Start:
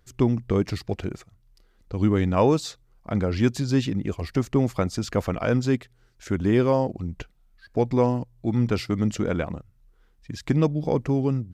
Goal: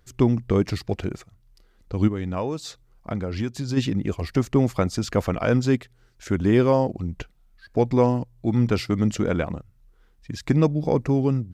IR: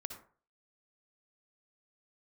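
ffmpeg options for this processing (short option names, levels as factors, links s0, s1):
-filter_complex "[0:a]asplit=3[s0][s1][s2];[s0]afade=t=out:st=2.07:d=0.02[s3];[s1]acompressor=threshold=0.0501:ratio=6,afade=t=in:st=2.07:d=0.02,afade=t=out:st=3.76:d=0.02[s4];[s2]afade=t=in:st=3.76:d=0.02[s5];[s3][s4][s5]amix=inputs=3:normalize=0,asettb=1/sr,asplit=3[s6][s7][s8];[s6]atrim=end=10.434[s9];[s7]atrim=start=10.43:end=11.11,asetpts=PTS-STARTPTS,afade=t=in:d=0.004:c=qsin,afade=t=out:st=0.676:d=0.004:c=qsin,bandreject=f=3100:w=7.5[s10];[s8]atrim=start=11.106[s11];[s9][s10]acrossfade=d=0.004:c1=hsin:c2=qsin[s12];[s12][s11]acrossfade=d=0.004:c1=qsin:c2=hsin,volume=1.26"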